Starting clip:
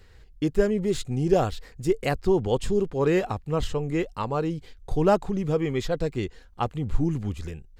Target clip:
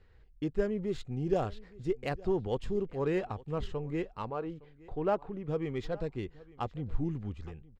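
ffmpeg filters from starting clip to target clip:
-filter_complex "[0:a]asettb=1/sr,asplit=3[a][b][c];[a]atrim=end=4.304[d];[b]atrim=start=4.3:end=5.48,asetpts=PTS-STARTPTS,afade=t=in:d=0.004:c=qsin,afade=t=out:st=1.176:d=0.004:c=qsin,bass=f=250:g=-7,treble=f=4k:g=-15[e];[c]atrim=start=5.476[f];[d][e]acrossfade=d=0.004:c1=hsin:c2=qsin[g];[g][f]acrossfade=d=0.004:c1=qsin:c2=hsin,adynamicsmooth=sensitivity=2.5:basefreq=3.4k,asplit=2[h][i];[i]aecho=0:1:863:0.0841[j];[h][j]amix=inputs=2:normalize=0,volume=-8.5dB"

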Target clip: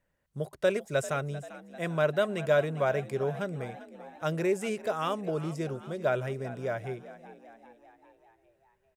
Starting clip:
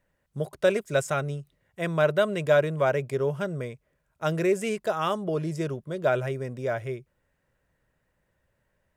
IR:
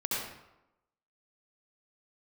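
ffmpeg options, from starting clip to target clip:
-filter_complex "[0:a]asplit=6[a][b][c][d][e][f];[b]adelay=394,afreqshift=54,volume=-16dB[g];[c]adelay=788,afreqshift=108,volume=-20.9dB[h];[d]adelay=1182,afreqshift=162,volume=-25.8dB[i];[e]adelay=1576,afreqshift=216,volume=-30.6dB[j];[f]adelay=1970,afreqshift=270,volume=-35.5dB[k];[a][g][h][i][j][k]amix=inputs=6:normalize=0,volume=-4dB"

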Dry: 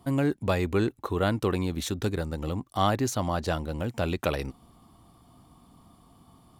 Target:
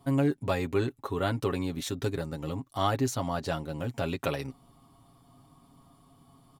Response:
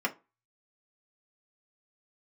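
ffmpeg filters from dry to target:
-af "aecho=1:1:7.3:0.65,volume=-4dB"

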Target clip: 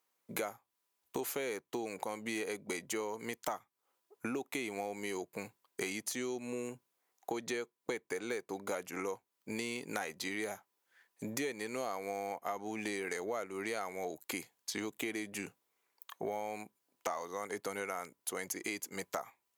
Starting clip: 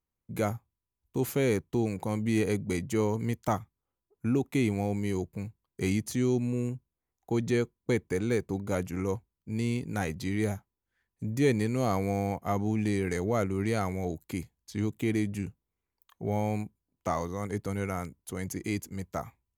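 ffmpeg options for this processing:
-af "highpass=530,acompressor=threshold=-47dB:ratio=8,volume=11.5dB"

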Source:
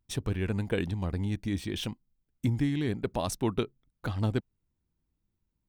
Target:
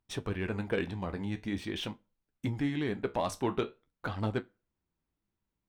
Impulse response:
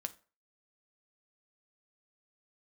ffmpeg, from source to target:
-filter_complex "[0:a]asplit=2[a][b];[1:a]atrim=start_sample=2205,highshelf=f=11k:g=11.5[c];[b][c]afir=irnorm=-1:irlink=0,volume=-7dB[d];[a][d]amix=inputs=2:normalize=0,flanger=delay=9.4:depth=6.8:regen=-62:speed=0.45:shape=sinusoidal,asplit=2[e][f];[f]highpass=f=720:p=1,volume=13dB,asoftclip=type=tanh:threshold=-13dB[g];[e][g]amix=inputs=2:normalize=0,lowpass=f=1.7k:p=1,volume=-6dB,volume=-1.5dB"

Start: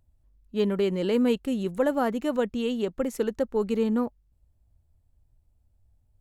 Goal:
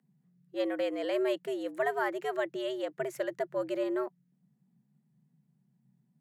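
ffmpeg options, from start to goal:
-af "equalizer=f=1.7k:w=2:g=9.5,afreqshift=130,volume=-7dB"

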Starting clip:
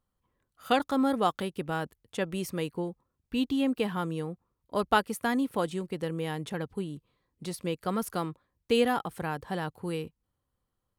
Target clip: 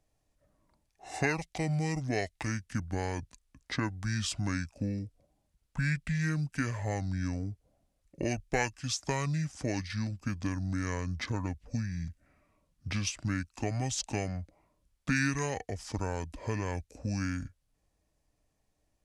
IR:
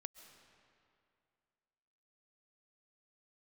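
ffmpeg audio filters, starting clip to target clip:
-filter_complex "[0:a]acrossover=split=130|3000[a][b][c];[b]acompressor=threshold=-39dB:ratio=4[d];[a][d][c]amix=inputs=3:normalize=0,asetrate=25442,aresample=44100,volume=6dB"

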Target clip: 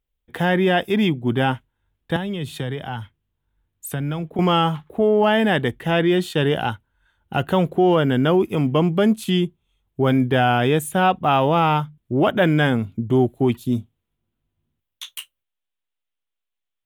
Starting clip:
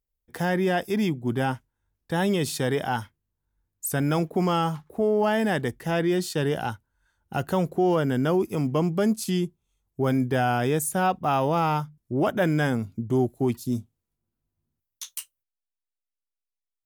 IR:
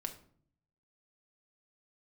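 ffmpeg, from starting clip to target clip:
-filter_complex "[0:a]highshelf=f=4.1k:t=q:w=3:g=-7,asettb=1/sr,asplit=3[a][b][c];[a]atrim=end=2.164[d];[b]atrim=start=2.16:end=4.39,asetpts=PTS-STARTPTS,afade=t=in:d=0.004:c=qsin,afade=t=out:st=2.226:d=0.004:c=qsin,acrossover=split=140[e][f];[f]acompressor=threshold=-34dB:ratio=5[g];[e][g]amix=inputs=2:normalize=0[h];[c]atrim=start=4.386[i];[d][h]acrossfade=d=0.004:c1=hsin:c2=qsin[j];[j][i]acrossfade=d=0.004:c1=qsin:c2=hsin,volume=5.5dB"

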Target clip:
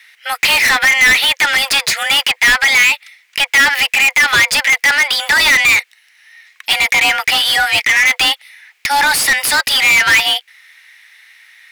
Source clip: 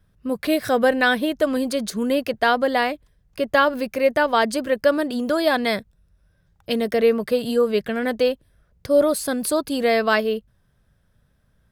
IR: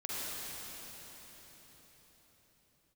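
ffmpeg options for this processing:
-filter_complex "[0:a]highpass=f=1.9k:t=q:w=2.8,afreqshift=280,asplit=2[a][b];[b]highpass=f=720:p=1,volume=35dB,asoftclip=type=tanh:threshold=-3dB[c];[a][c]amix=inputs=2:normalize=0,lowpass=f=5.1k:p=1,volume=-6dB"

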